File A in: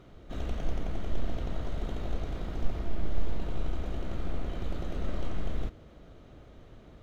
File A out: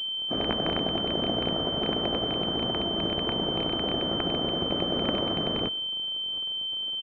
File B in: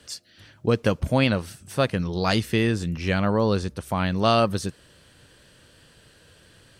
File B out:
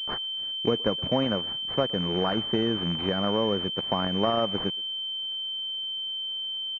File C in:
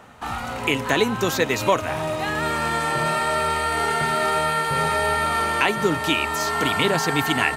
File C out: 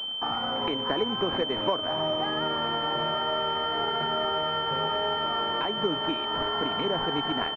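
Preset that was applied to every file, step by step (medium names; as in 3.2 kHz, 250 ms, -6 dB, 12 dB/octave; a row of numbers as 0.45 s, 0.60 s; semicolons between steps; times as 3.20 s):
rattle on loud lows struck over -29 dBFS, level -24 dBFS; high-pass 200 Hz 12 dB/octave; compression 3:1, threshold -27 dBFS; crossover distortion -53.5 dBFS; speakerphone echo 120 ms, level -23 dB; class-D stage that switches slowly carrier 3.1 kHz; normalise loudness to -27 LUFS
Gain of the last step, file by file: +14.5 dB, +4.5 dB, +2.0 dB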